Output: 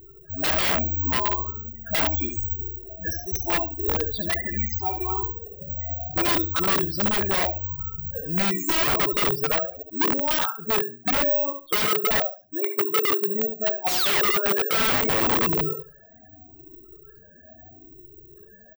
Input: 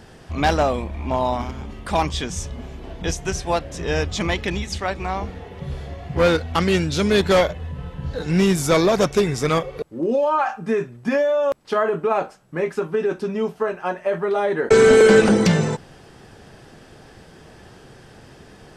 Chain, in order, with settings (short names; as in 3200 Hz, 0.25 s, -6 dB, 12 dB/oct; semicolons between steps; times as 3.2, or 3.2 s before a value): moving spectral ripple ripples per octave 0.64, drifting +0.77 Hz, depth 13 dB; high shelf 4000 Hz +7.5 dB; comb 3 ms, depth 56%; loudest bins only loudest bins 8; feedback echo 70 ms, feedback 21%, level -7 dB; painted sound fall, 13.88–14.22, 520–2700 Hz -13 dBFS; wrapped overs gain 12 dB; air absorption 67 m; careless resampling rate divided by 2×, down filtered, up zero stuff; gain -6.5 dB